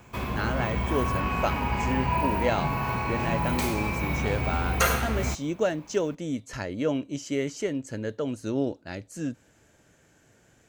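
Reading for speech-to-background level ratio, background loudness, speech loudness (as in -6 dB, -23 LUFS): -3.5 dB, -28.0 LUFS, -31.5 LUFS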